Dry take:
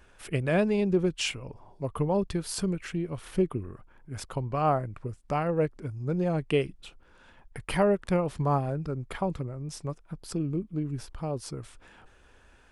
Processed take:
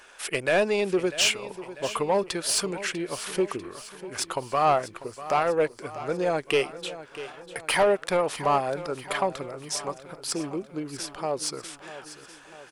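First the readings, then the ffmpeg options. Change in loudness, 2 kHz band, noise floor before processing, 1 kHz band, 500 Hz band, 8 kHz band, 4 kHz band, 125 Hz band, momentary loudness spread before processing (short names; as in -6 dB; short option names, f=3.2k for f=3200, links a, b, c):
+3.0 dB, +8.5 dB, -58 dBFS, +6.0 dB, +3.5 dB, +11.0 dB, +9.5 dB, -9.5 dB, 15 LU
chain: -filter_complex "[0:a]bass=f=250:g=-11,treble=f=4k:g=7,asplit=2[a][b];[b]highpass=f=720:p=1,volume=16dB,asoftclip=type=tanh:threshold=-11dB[c];[a][c]amix=inputs=2:normalize=0,lowpass=f=5.3k:p=1,volume=-6dB,aecho=1:1:645|1290|1935|2580|3225:0.188|0.104|0.057|0.0313|0.0172"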